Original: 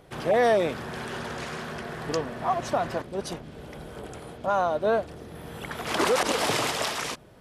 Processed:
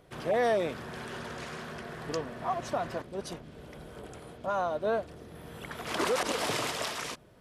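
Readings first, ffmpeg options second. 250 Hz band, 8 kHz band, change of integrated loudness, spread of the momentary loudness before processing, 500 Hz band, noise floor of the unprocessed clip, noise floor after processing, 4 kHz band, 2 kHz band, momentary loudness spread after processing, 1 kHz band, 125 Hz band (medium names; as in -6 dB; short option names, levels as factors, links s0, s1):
-5.5 dB, -5.5 dB, -5.5 dB, 17 LU, -5.5 dB, -45 dBFS, -51 dBFS, -5.5 dB, -5.5 dB, 17 LU, -6.0 dB, -5.5 dB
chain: -af "bandreject=f=820:w=17,volume=0.531"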